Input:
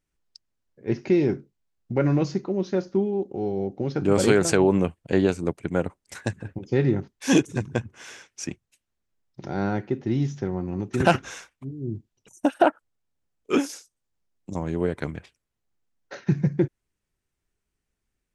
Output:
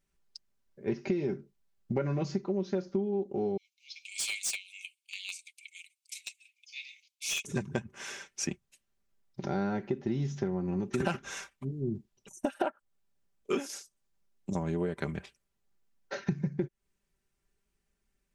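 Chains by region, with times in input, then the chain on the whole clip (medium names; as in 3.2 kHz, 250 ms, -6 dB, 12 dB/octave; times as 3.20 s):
3.57–7.45 s: Chebyshev high-pass 2.2 kHz, order 8 + hard clipper -28.5 dBFS
whole clip: comb 5.1 ms, depth 51%; compression 6:1, threshold -28 dBFS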